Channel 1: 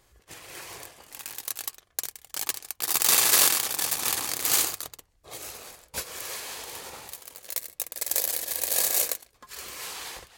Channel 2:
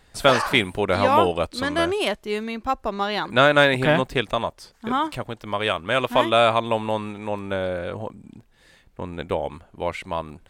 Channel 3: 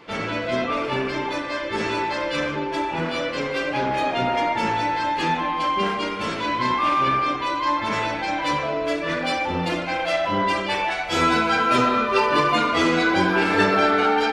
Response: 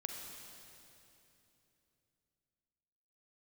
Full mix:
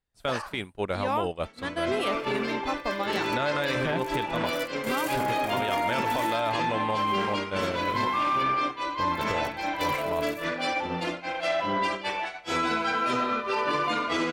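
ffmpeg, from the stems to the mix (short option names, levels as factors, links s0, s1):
-filter_complex "[0:a]aecho=1:1:1.6:0.91,adelay=1650,volume=0.141[s0];[1:a]lowshelf=f=190:g=3.5,acompressor=threshold=0.1:ratio=2,volume=1.12,asplit=2[s1][s2];[2:a]lowshelf=f=110:g=-9,dynaudnorm=f=120:g=9:m=3.55,adelay=1350,volume=0.473[s3];[s2]apad=whole_len=530505[s4];[s0][s4]sidechaingate=range=0.0224:threshold=0.00891:ratio=16:detection=peak[s5];[s5][s1][s3]amix=inputs=3:normalize=0,agate=range=0.0224:threshold=0.178:ratio=3:detection=peak,alimiter=limit=0.126:level=0:latency=1:release=49"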